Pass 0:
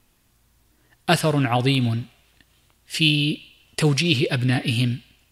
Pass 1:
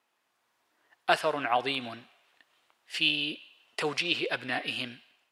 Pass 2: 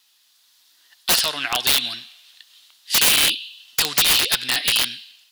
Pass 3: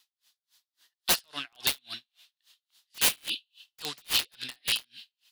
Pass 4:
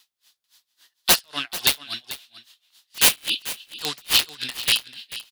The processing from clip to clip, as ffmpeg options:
-af "lowpass=f=1400:p=1,dynaudnorm=f=160:g=5:m=1.58,highpass=710,volume=0.75"
-af "equalizer=f=500:t=o:w=1:g=-7,equalizer=f=2000:t=o:w=1:g=9,equalizer=f=4000:t=o:w=1:g=6,equalizer=f=8000:t=o:w=1:g=-4,aexciter=amount=8.1:drive=7.2:freq=3300,aeval=exprs='(mod(2.82*val(0)+1,2)-1)/2.82':c=same"
-af "aeval=exprs='val(0)*pow(10,-40*(0.5-0.5*cos(2*PI*3.6*n/s))/20)':c=same,volume=0.562"
-af "aecho=1:1:440:0.178,volume=2.51"

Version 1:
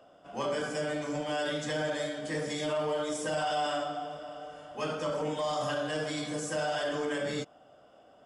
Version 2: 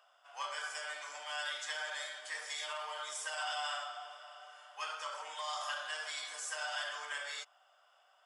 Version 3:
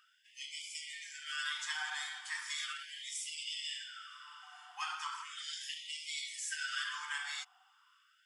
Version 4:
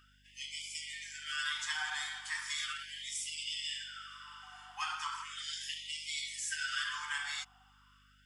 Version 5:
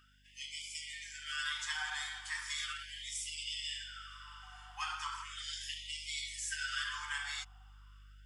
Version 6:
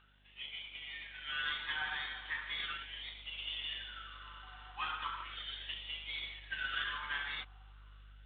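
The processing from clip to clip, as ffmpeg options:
-af "highpass=f=940:w=0.5412,highpass=f=940:w=1.3066,volume=0.841"
-af "afftfilt=real='re*gte(b*sr/1024,690*pow(2000/690,0.5+0.5*sin(2*PI*0.37*pts/sr)))':imag='im*gte(b*sr/1024,690*pow(2000/690,0.5+0.5*sin(2*PI*0.37*pts/sr)))':win_size=1024:overlap=0.75,volume=1.19"
-af "aeval=exprs='val(0)+0.000355*(sin(2*PI*50*n/s)+sin(2*PI*2*50*n/s)/2+sin(2*PI*3*50*n/s)/3+sin(2*PI*4*50*n/s)/4+sin(2*PI*5*50*n/s)/5)':c=same,volume=1.26"
-af "asubboost=boost=9:cutoff=71,volume=0.841"
-af "volume=1.12" -ar 8000 -c:a adpcm_g726 -b:a 24k

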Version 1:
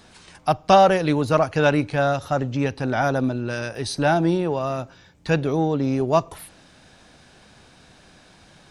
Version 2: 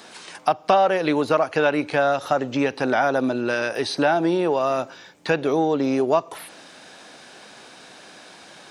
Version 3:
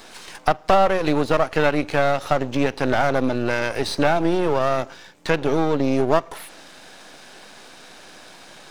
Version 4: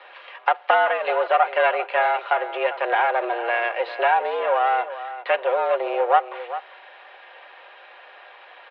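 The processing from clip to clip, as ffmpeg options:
-filter_complex "[0:a]acrossover=split=4100[s0][s1];[s1]acompressor=threshold=0.00447:ratio=4:attack=1:release=60[s2];[s0][s2]amix=inputs=2:normalize=0,highpass=310,acompressor=threshold=0.0501:ratio=3,volume=2.51"
-af "aeval=exprs='if(lt(val(0),0),0.251*val(0),val(0))':c=same,volume=1.58"
-af "aecho=1:1:4.6:0.44,aecho=1:1:397:0.224,highpass=f=370:t=q:w=0.5412,highpass=f=370:t=q:w=1.307,lowpass=f=3000:t=q:w=0.5176,lowpass=f=3000:t=q:w=0.7071,lowpass=f=3000:t=q:w=1.932,afreqshift=110"

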